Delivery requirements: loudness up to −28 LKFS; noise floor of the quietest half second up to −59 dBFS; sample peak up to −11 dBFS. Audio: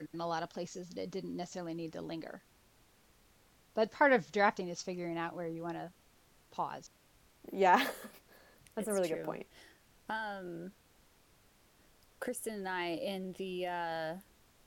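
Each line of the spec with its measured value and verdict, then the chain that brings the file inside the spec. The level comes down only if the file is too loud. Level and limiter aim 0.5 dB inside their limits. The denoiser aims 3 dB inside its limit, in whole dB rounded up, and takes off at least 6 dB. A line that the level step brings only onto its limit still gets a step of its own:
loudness −36.0 LKFS: in spec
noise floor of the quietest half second −66 dBFS: in spec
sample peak −12.5 dBFS: in spec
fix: no processing needed

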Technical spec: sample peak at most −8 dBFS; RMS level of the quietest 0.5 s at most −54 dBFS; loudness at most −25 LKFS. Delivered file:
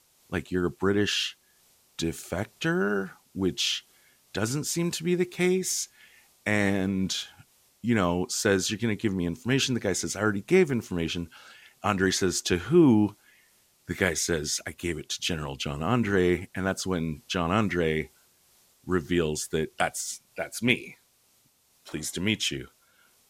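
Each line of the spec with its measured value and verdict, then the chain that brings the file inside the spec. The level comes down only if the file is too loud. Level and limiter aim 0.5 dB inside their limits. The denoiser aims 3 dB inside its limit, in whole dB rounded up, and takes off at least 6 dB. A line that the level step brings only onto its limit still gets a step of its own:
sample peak −7.0 dBFS: out of spec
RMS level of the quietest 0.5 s −65 dBFS: in spec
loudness −27.5 LKFS: in spec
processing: brickwall limiter −8.5 dBFS

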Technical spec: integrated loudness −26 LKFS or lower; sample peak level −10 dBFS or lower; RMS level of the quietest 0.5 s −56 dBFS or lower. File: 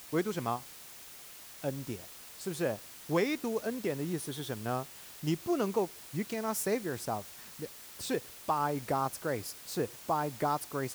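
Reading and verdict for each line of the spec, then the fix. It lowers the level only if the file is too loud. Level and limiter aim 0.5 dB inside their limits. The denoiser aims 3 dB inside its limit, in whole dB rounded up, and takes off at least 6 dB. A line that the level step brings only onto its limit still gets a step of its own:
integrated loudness −34.5 LKFS: in spec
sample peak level −16.5 dBFS: in spec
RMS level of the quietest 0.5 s −50 dBFS: out of spec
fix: broadband denoise 9 dB, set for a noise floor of −50 dBFS

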